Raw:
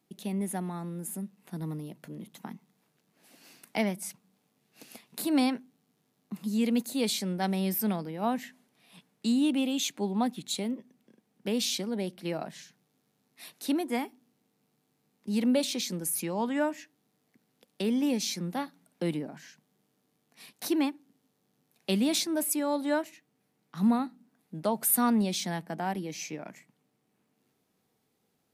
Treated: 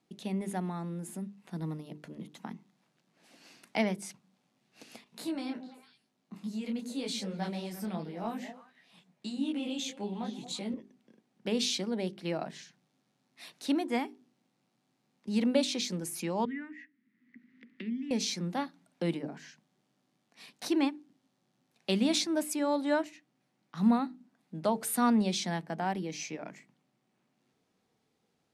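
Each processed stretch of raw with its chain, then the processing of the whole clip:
0:05.04–0:10.74: downward compressor, threshold −27 dBFS + echo through a band-pass that steps 113 ms, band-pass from 210 Hz, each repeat 1.4 octaves, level −6 dB + micro pitch shift up and down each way 31 cents
0:16.45–0:18.11: pair of resonant band-passes 690 Hz, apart 3 octaves + multiband upward and downward compressor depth 70%
whole clip: low-pass filter 7,100 Hz 12 dB per octave; mains-hum notches 50/100/150/200/250/300/350/400/450 Hz

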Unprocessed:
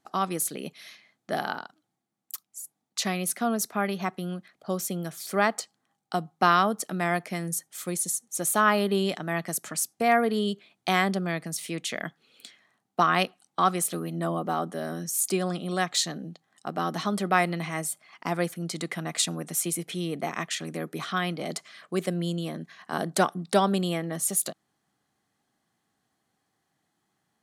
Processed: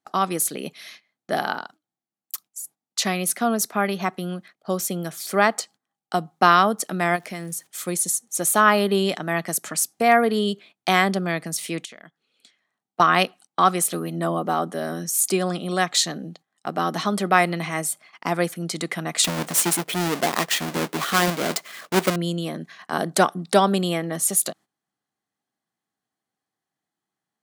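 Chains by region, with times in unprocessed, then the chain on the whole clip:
0:07.15–0:07.66: downward compressor 2 to 1, threshold −36 dBFS + surface crackle 590 per second −52 dBFS
0:11.85–0:13.00: low-pass filter 11,000 Hz 24 dB per octave + downward compressor 10 to 1, threshold −44 dBFS
0:19.24–0:22.16: each half-wave held at its own peak + low-shelf EQ 120 Hz −11 dB
whole clip: noise gate −50 dBFS, range −15 dB; low-shelf EQ 91 Hz −11 dB; level +5.5 dB

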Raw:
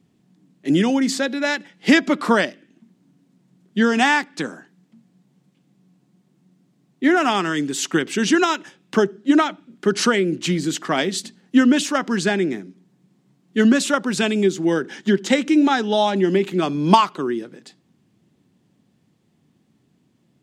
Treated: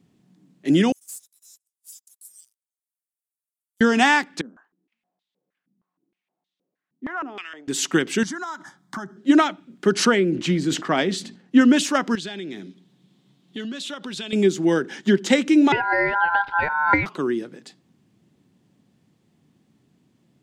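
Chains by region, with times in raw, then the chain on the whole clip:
0:00.92–0:03.81: inverse Chebyshev high-pass filter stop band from 2,000 Hz, stop band 80 dB + leveller curve on the samples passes 2
0:04.41–0:07.68: low-shelf EQ 310 Hz −10.5 dB + band-pass on a step sequencer 6.4 Hz 220–3,600 Hz
0:08.23–0:09.17: parametric band 1,100 Hz +4.5 dB 2.6 octaves + phaser with its sweep stopped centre 1,100 Hz, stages 4 + downward compressor 5 to 1, threshold −29 dBFS
0:10.05–0:11.61: low-pass filter 3,400 Hz 6 dB per octave + level that may fall only so fast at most 120 dB per second
0:12.15–0:14.33: parametric band 3,500 Hz +13.5 dB 0.68 octaves + downward compressor, threshold −30 dBFS
0:15.72–0:17.06: low-pass filter 1,300 Hz + ring modulation 1,200 Hz + multiband upward and downward compressor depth 70%
whole clip: no processing

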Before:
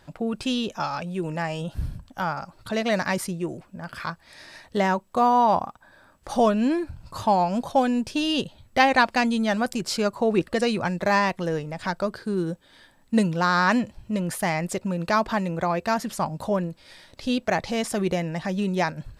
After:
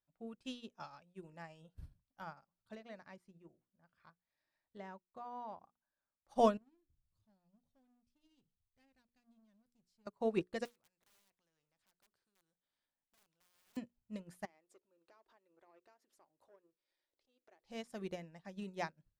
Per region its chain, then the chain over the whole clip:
0:02.75–0:05.64: high-shelf EQ 5,000 Hz −11 dB + downward compressor 2 to 1, threshold −27 dBFS
0:06.57–0:10.07: guitar amp tone stack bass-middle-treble 10-0-1 + leveller curve on the samples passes 3
0:10.65–0:13.77: wrap-around overflow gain 18 dB + downward compressor 2.5 to 1, threshold −28 dBFS + every bin compressed towards the loudest bin 2 to 1
0:14.45–0:17.65: downward compressor 10 to 1, threshold −30 dBFS + low shelf with overshoot 260 Hz −9.5 dB, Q 3 + saturating transformer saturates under 1,000 Hz
whole clip: mains-hum notches 60/120/180/240/300/360/420/480 Hz; expander for the loud parts 2.5 to 1, over −39 dBFS; level −7.5 dB

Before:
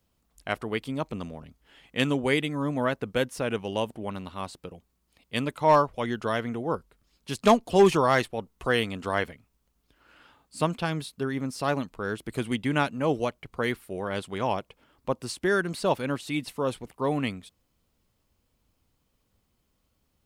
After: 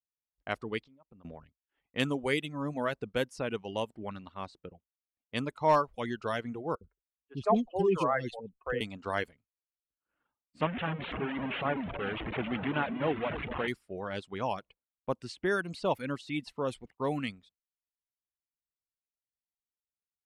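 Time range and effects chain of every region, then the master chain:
0:00.81–0:01.25: downward compressor 16 to 1, threshold −43 dBFS + high-frequency loss of the air 140 metres
0:06.75–0:08.81: expanding power law on the bin magnitudes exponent 1.6 + three-band delay without the direct sound mids, lows, highs 60/90 ms, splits 470/2,400 Hz
0:10.61–0:13.68: linear delta modulator 16 kbit/s, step −22.5 dBFS + high-pass filter 110 Hz 6 dB per octave + delay that swaps between a low-pass and a high-pass 255 ms, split 810 Hz, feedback 58%, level −9 dB
whole clip: reverb reduction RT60 0.79 s; downward expander −45 dBFS; low-pass that shuts in the quiet parts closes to 1,800 Hz, open at −22.5 dBFS; level −4.5 dB

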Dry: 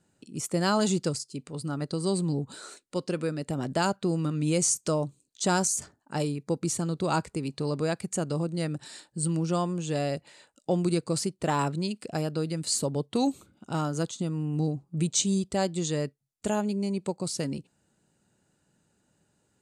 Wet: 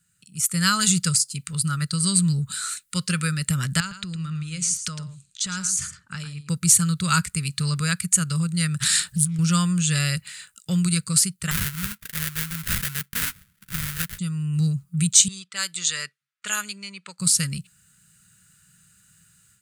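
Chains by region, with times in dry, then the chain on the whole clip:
0:03.80–0:06.49: low-pass filter 5,500 Hz + downward compressor 5 to 1, threshold −37 dBFS + single-tap delay 110 ms −10.5 dB
0:08.80–0:09.39: low-shelf EQ 330 Hz +9 dB + compressor whose output falls as the input rises −33 dBFS + highs frequency-modulated by the lows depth 0.47 ms
0:11.51–0:14.19: low-pass filter 3,800 Hz 6 dB per octave + spectral tilt +2 dB per octave + sample-rate reduction 1,200 Hz, jitter 20%
0:15.28–0:17.19: high-pass filter 560 Hz + low-pass that shuts in the quiet parts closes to 1,800 Hz, open at −26.5 dBFS
whole clip: drawn EQ curve 180 Hz 0 dB, 280 Hz −24 dB, 500 Hz −20 dB, 770 Hz −26 dB, 1,300 Hz +3 dB, 5,700 Hz +4 dB, 12,000 Hz +15 dB; automatic gain control gain up to 11.5 dB; level −1 dB

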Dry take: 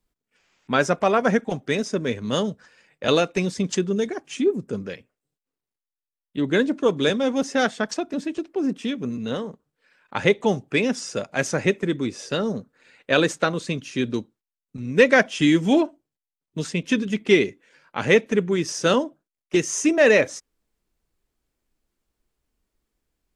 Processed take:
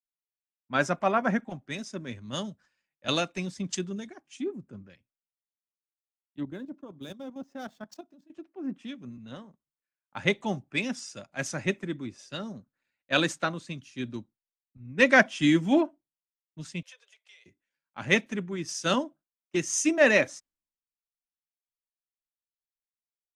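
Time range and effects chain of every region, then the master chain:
0:06.43–0:08.30: running median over 5 samples + parametric band 2,000 Hz −9 dB 1.4 octaves + output level in coarse steps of 12 dB
0:16.82–0:17.46: Butterworth high-pass 460 Hz 96 dB per octave + downward compressor 5 to 1, threshold −34 dBFS
whole clip: parametric band 450 Hz −13.5 dB 0.3 octaves; multiband upward and downward expander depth 100%; level −8 dB

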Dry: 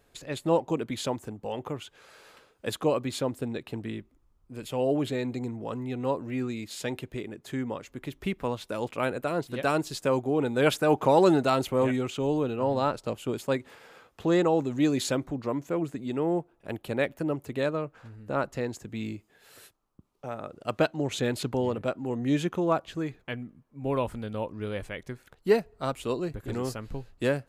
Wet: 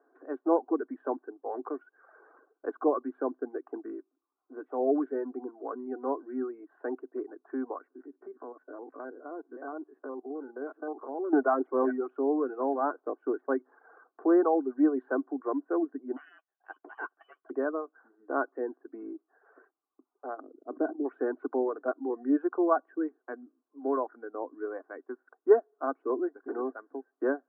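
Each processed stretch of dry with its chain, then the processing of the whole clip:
0:07.90–0:11.33: spectrum averaged block by block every 50 ms + head-to-tape spacing loss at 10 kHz 32 dB + downward compressor 2 to 1, threshold −41 dBFS
0:16.16–0:17.50: gain into a clipping stage and back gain 23 dB + double-tracking delay 12 ms −8 dB + voice inversion scrambler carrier 3,300 Hz
0:20.40–0:21.05: resonant band-pass 220 Hz, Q 0.98 + level that may fall only so fast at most 73 dB per second
whole clip: Chebyshev band-pass filter 260–1,600 Hz, order 5; reverb reduction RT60 0.73 s; comb filter 2.7 ms, depth 49%

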